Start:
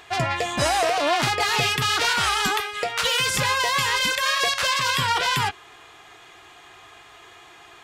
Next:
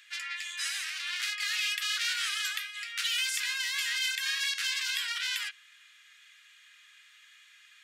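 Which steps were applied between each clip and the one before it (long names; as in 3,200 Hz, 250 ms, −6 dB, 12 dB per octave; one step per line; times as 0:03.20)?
Butterworth high-pass 1,600 Hz 36 dB per octave
level −7 dB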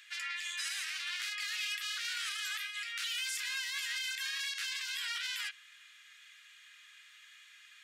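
brickwall limiter −28 dBFS, peak gain reduction 10 dB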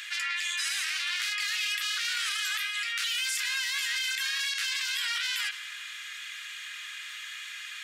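convolution reverb RT60 1.3 s, pre-delay 57 ms, DRR 22 dB
amplitude modulation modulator 240 Hz, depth 15%
envelope flattener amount 50%
level +7 dB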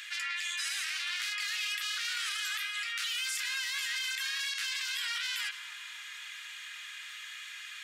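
bucket-brigade delay 268 ms, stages 2,048, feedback 85%, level −9 dB
level −4 dB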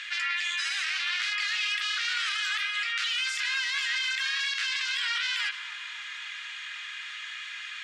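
high-frequency loss of the air 110 metres
level +7.5 dB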